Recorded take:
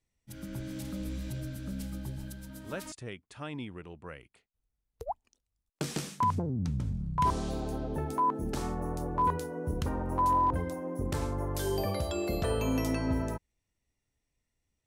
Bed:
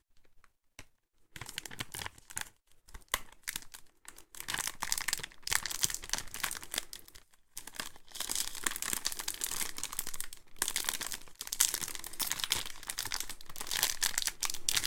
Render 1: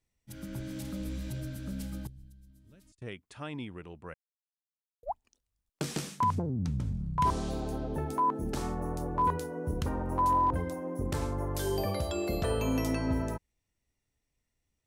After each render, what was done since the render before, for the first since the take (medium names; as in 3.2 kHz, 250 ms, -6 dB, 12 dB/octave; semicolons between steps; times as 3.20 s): 2.07–3.02 s: amplifier tone stack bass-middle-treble 10-0-1; 4.14–5.03 s: mute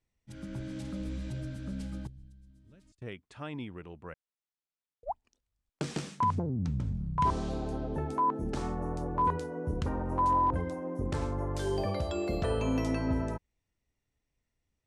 low-pass 9.6 kHz 24 dB/octave; treble shelf 4.9 kHz -7.5 dB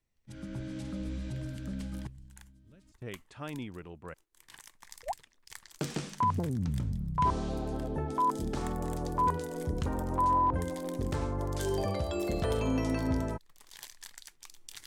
add bed -17 dB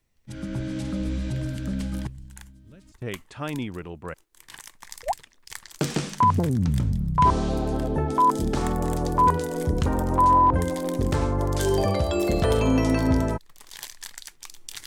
trim +9 dB